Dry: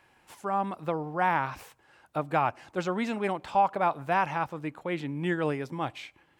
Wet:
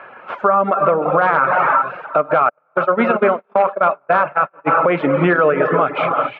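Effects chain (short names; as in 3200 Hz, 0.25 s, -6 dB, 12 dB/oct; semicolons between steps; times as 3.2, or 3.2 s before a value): non-linear reverb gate 0.45 s flat, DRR 5.5 dB; dynamic EQ 840 Hz, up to -5 dB, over -34 dBFS, Q 1.7; echo 0.361 s -18.5 dB; 2.49–4.69 gate -29 dBFS, range -40 dB; reverb removal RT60 0.54 s; wavefolder -19 dBFS; speaker cabinet 310–2100 Hz, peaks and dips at 320 Hz -10 dB, 600 Hz +6 dB, 870 Hz -7 dB, 1300 Hz +9 dB, 1900 Hz -8 dB; compressor 5:1, threshold -36 dBFS, peak gain reduction 12 dB; maximiser +30 dB; gain -3.5 dB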